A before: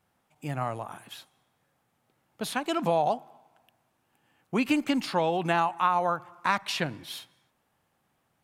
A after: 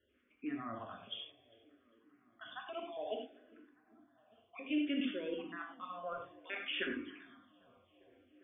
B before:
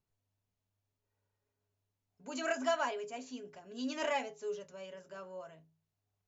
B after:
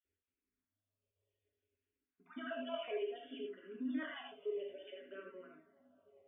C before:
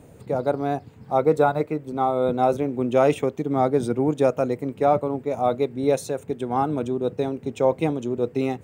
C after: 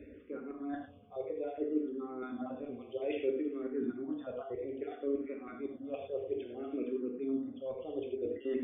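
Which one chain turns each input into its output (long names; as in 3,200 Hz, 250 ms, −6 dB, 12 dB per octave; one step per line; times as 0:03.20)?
time-frequency cells dropped at random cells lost 38%
high-pass filter 54 Hz
dynamic equaliser 910 Hz, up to +4 dB, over −38 dBFS, Q 2.1
reversed playback
downward compressor 16 to 1, threshold −33 dBFS
reversed playback
linear-phase brick-wall low-pass 3,600 Hz
phaser with its sweep stopped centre 360 Hz, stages 4
tuned comb filter 71 Hz, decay 1.5 s, harmonics all, mix 30%
on a send: feedback echo with a low-pass in the loop 400 ms, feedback 83%, low-pass 2,300 Hz, level −23 dB
on the sum: reverb whose tail is shaped and stops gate 130 ms flat, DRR 1 dB
frequency shifter mixed with the dry sound −0.6 Hz
level +5.5 dB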